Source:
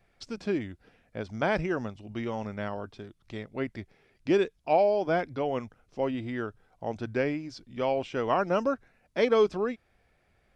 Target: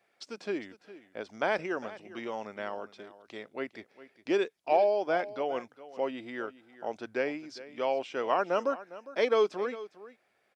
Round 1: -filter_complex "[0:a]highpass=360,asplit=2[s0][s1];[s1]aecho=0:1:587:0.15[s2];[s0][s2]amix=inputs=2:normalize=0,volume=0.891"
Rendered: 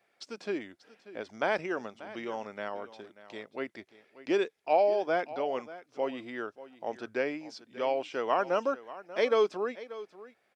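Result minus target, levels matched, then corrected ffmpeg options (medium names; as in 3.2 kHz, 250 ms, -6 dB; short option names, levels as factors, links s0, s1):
echo 181 ms late
-filter_complex "[0:a]highpass=360,asplit=2[s0][s1];[s1]aecho=0:1:406:0.15[s2];[s0][s2]amix=inputs=2:normalize=0,volume=0.891"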